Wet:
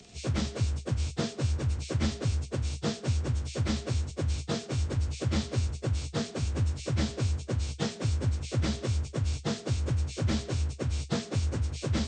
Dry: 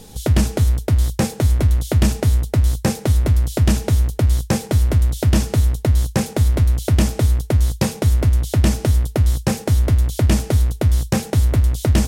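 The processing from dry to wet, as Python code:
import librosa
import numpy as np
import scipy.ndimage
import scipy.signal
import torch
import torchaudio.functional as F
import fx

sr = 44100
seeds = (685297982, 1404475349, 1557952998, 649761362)

y = fx.partial_stretch(x, sr, pct=86)
y = fx.low_shelf(y, sr, hz=99.0, db=-7.0)
y = F.gain(torch.from_numpy(y), -8.0).numpy()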